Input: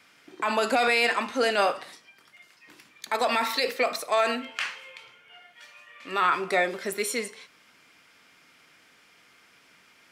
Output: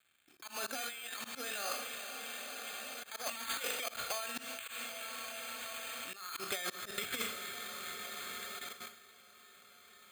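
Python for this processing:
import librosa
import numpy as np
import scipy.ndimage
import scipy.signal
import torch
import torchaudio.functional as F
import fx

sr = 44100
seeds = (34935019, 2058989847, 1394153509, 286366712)

p1 = np.sign(x) * np.maximum(np.abs(x) - 10.0 ** (-55.5 / 20.0), 0.0)
p2 = p1 + fx.echo_diffused(p1, sr, ms=456, feedback_pct=71, wet_db=-13.5, dry=0)
p3 = np.repeat(p2[::8], 8)[:len(p2)]
p4 = fx.notch_comb(p3, sr, f0_hz=980.0)
p5 = fx.level_steps(p4, sr, step_db=16)
p6 = fx.tone_stack(p5, sr, knobs='5-5-5')
p7 = fx.rev_schroeder(p6, sr, rt60_s=0.63, comb_ms=27, drr_db=8.0)
p8 = fx.over_compress(p7, sr, threshold_db=-48.0, ratio=-0.5)
p9 = fx.auto_swell(p8, sr, attack_ms=126.0)
y = p9 * librosa.db_to_amplitude(11.5)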